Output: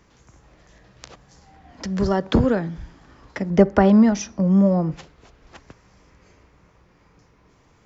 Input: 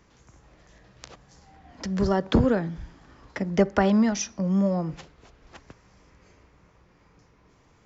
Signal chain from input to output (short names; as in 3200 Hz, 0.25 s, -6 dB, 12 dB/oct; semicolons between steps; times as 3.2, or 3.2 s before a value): 3.5–4.92 tilt shelf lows +4.5 dB, about 1400 Hz; gain +2.5 dB